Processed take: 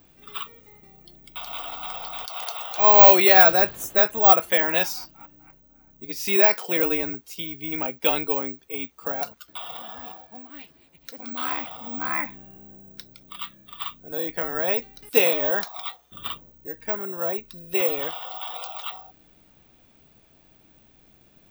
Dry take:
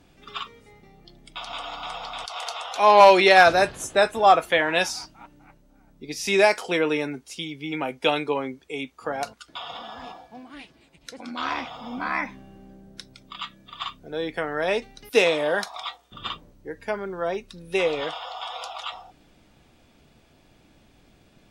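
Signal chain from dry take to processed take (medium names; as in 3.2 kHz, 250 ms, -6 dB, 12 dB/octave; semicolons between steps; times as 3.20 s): careless resampling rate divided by 2×, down none, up zero stuff; trim -2.5 dB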